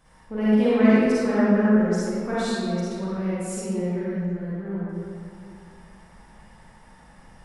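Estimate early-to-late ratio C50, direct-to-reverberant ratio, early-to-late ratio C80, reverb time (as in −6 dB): −8.0 dB, −10.5 dB, −4.0 dB, 2.3 s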